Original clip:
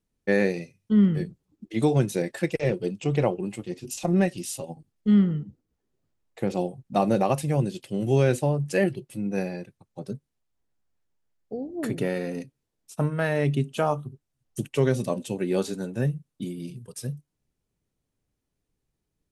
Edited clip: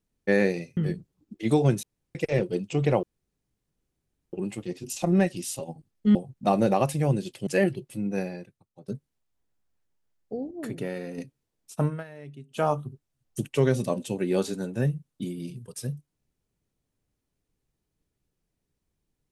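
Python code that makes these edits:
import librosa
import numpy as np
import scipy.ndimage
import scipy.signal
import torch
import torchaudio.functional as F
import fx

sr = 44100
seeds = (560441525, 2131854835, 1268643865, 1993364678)

y = fx.edit(x, sr, fx.cut(start_s=0.77, length_s=0.31),
    fx.room_tone_fill(start_s=2.14, length_s=0.32),
    fx.insert_room_tone(at_s=3.34, length_s=1.3),
    fx.cut(start_s=5.16, length_s=1.48),
    fx.cut(start_s=7.96, length_s=0.71),
    fx.fade_out_to(start_s=9.22, length_s=0.86, floor_db=-16.0),
    fx.clip_gain(start_s=11.71, length_s=0.67, db=-5.5),
    fx.fade_down_up(start_s=13.08, length_s=0.76, db=-19.5, fade_s=0.16), tone=tone)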